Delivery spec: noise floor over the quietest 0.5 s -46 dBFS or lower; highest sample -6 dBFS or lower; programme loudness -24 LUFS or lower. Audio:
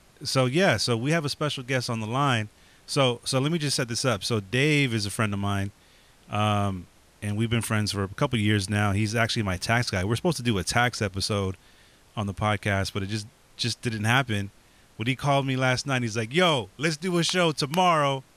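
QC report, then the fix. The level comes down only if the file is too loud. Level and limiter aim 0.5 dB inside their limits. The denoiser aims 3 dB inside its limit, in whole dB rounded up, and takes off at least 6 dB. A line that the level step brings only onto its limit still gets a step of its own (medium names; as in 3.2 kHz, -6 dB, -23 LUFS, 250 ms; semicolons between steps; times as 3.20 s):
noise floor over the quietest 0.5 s -56 dBFS: pass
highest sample -8.0 dBFS: pass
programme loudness -25.5 LUFS: pass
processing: none needed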